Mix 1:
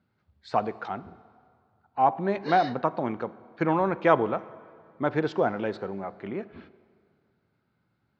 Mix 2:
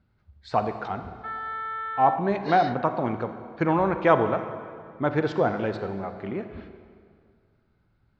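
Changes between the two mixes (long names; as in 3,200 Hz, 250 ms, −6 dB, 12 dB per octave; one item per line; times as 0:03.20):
speech: send +10.5 dB
first sound: unmuted
master: remove high-pass filter 140 Hz 12 dB per octave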